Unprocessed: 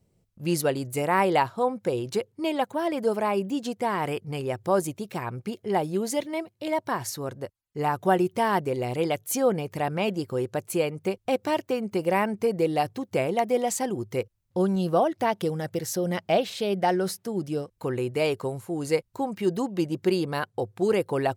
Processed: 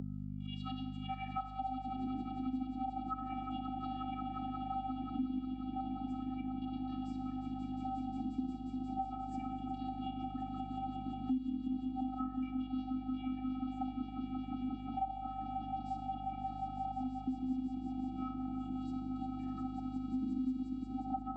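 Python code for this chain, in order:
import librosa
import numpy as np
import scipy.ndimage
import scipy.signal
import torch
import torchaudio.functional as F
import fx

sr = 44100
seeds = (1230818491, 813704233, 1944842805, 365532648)

y = fx.wah_lfo(x, sr, hz=0.33, low_hz=300.0, high_hz=3500.0, q=19.0)
y = fx.rider(y, sr, range_db=5, speed_s=0.5)
y = fx.auto_swell(y, sr, attack_ms=159.0)
y = fx.peak_eq(y, sr, hz=2700.0, db=-10.0, octaves=2.6)
y = fx.echo_swell(y, sr, ms=178, loudest=5, wet_db=-14)
y = fx.room_shoebox(y, sr, seeds[0], volume_m3=1800.0, walls='mixed', distance_m=1.4)
y = fx.vocoder(y, sr, bands=16, carrier='square', carrier_hz=258.0)
y = fx.peak_eq(y, sr, hz=1300.0, db=2.5, octaves=0.77)
y = fx.notch(y, sr, hz=1800.0, q=13.0)
y = fx.notch_comb(y, sr, f0_hz=460.0)
y = fx.add_hum(y, sr, base_hz=50, snr_db=12)
y = fx.band_squash(y, sr, depth_pct=100)
y = y * librosa.db_to_amplitude(7.5)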